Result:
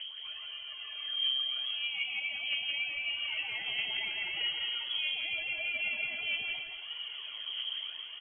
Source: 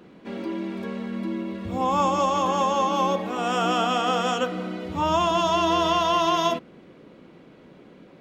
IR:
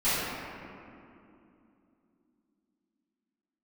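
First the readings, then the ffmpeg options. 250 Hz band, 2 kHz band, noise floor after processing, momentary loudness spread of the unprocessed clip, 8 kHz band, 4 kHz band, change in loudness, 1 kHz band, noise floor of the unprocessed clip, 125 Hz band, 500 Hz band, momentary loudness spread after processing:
-36.5 dB, +0.5 dB, -44 dBFS, 11 LU, under -40 dB, +1.0 dB, -9.0 dB, -32.5 dB, -50 dBFS, under -30 dB, -31.0 dB, 8 LU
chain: -filter_complex "[0:a]highshelf=f=2.3k:g=-8.5,acompressor=threshold=-37dB:ratio=6,alimiter=level_in=13.5dB:limit=-24dB:level=0:latency=1:release=12,volume=-13.5dB,dynaudnorm=f=790:g=3:m=5.5dB,aphaser=in_gain=1:out_gain=1:delay=2.1:decay=0.66:speed=0.79:type=triangular,aecho=1:1:169.1|271.1:0.562|0.316,asplit=2[a][b];[1:a]atrim=start_sample=2205[c];[b][c]afir=irnorm=-1:irlink=0,volume=-30dB[d];[a][d]amix=inputs=2:normalize=0,lowpass=f=2.9k:t=q:w=0.5098,lowpass=f=2.9k:t=q:w=0.6013,lowpass=f=2.9k:t=q:w=0.9,lowpass=f=2.9k:t=q:w=2.563,afreqshift=-3400"

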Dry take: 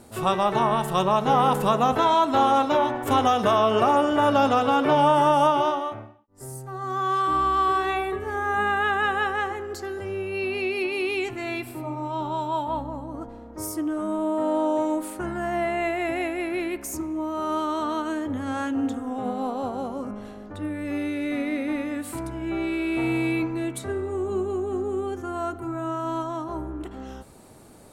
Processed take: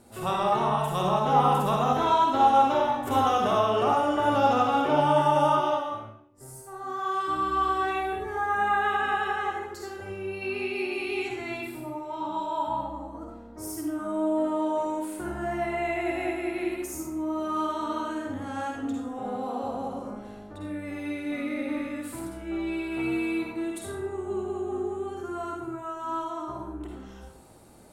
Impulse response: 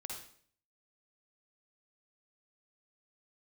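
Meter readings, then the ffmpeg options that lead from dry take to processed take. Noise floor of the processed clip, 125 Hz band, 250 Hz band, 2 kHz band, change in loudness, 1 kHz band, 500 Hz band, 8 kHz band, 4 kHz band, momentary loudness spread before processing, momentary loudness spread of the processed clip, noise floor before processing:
-45 dBFS, -2.5 dB, -4.0 dB, -3.5 dB, -3.0 dB, -2.0 dB, -3.5 dB, -4.0 dB, -4.0 dB, 13 LU, 15 LU, -42 dBFS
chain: -filter_complex "[1:a]atrim=start_sample=2205[a];[0:a][a]afir=irnorm=-1:irlink=0,volume=-1.5dB"

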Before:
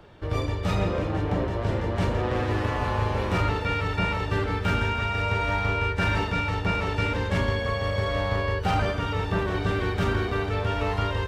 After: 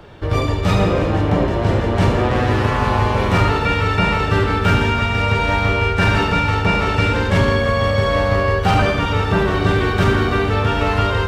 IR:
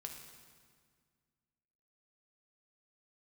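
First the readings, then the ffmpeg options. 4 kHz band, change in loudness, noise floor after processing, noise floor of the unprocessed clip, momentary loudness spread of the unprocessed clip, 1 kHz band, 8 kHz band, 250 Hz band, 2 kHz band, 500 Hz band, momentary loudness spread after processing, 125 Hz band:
+9.5 dB, +9.0 dB, -20 dBFS, -30 dBFS, 2 LU, +9.5 dB, +9.5 dB, +10.0 dB, +9.0 dB, +9.5 dB, 2 LU, +9.0 dB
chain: -filter_complex "[0:a]asplit=2[a][b];[1:a]atrim=start_sample=2205,adelay=72[c];[b][c]afir=irnorm=-1:irlink=0,volume=-3.5dB[d];[a][d]amix=inputs=2:normalize=0,volume=9dB"

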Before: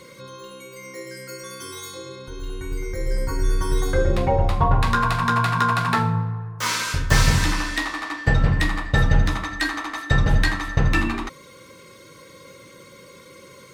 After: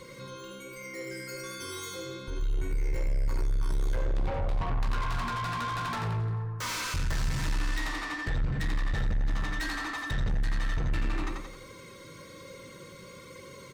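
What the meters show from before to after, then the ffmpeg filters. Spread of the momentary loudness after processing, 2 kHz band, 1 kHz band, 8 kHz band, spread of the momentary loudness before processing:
15 LU, -11.0 dB, -12.0 dB, -10.0 dB, 17 LU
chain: -af "aecho=1:1:88|176|264|352|440:0.501|0.221|0.097|0.0427|0.0188,acompressor=threshold=-19dB:ratio=6,flanger=delay=1.6:depth=5.3:regen=80:speed=1.2:shape=triangular,acontrast=80,equalizer=f=11k:t=o:w=0.37:g=-3.5,asoftclip=type=tanh:threshold=-24.5dB,lowshelf=f=120:g=8,volume=-6dB"

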